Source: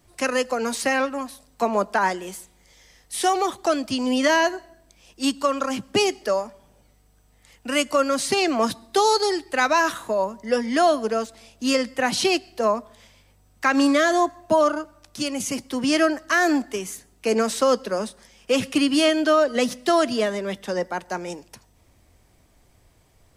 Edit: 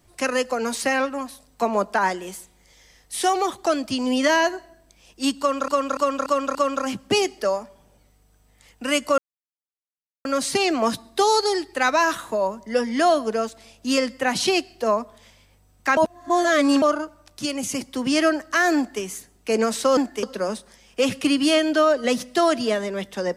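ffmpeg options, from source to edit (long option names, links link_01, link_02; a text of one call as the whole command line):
ffmpeg -i in.wav -filter_complex "[0:a]asplit=10[link_01][link_02][link_03][link_04][link_05][link_06][link_07][link_08][link_09][link_10];[link_01]atrim=end=5.682[link_11];[link_02]atrim=start=5.388:end=5.682[link_12];[link_03]atrim=start=5.388:end=5.682[link_13];[link_04]atrim=start=5.388:end=5.682[link_14];[link_05]atrim=start=5.388:end=8.02,asetpts=PTS-STARTPTS,afade=type=out:start_time=2.628:duration=0.004:curve=hsin,apad=pad_dur=1.07[link_15];[link_06]atrim=start=8.02:end=13.742,asetpts=PTS-STARTPTS,afade=type=in:duration=0.004:curve=hsin[link_16];[link_07]atrim=start=13.738:end=14.592,asetpts=PTS-STARTPTS,areverse[link_17];[link_08]atrim=start=14.588:end=17.742[link_18];[link_09]atrim=start=16.528:end=16.792[link_19];[link_10]atrim=start=17.738[link_20];[link_11][link_12]acrossfade=duration=0.004:curve1=hsin:curve2=hsin[link_21];[link_21][link_13]acrossfade=duration=0.004:curve1=hsin:curve2=hsin[link_22];[link_22][link_14]acrossfade=duration=0.004:curve1=hsin:curve2=hsin[link_23];[link_15][link_16]concat=n=2:v=0:a=1[link_24];[link_23][link_24]acrossfade=duration=0.004:curve1=hsin:curve2=hsin[link_25];[link_25][link_17]acrossfade=duration=0.004:curve1=hsin:curve2=hsin[link_26];[link_26][link_18]acrossfade=duration=0.004:curve1=hsin:curve2=hsin[link_27];[link_27][link_19]acrossfade=duration=0.004:curve1=hsin:curve2=hsin[link_28];[link_28][link_20]acrossfade=duration=0.004:curve1=hsin:curve2=hsin" out.wav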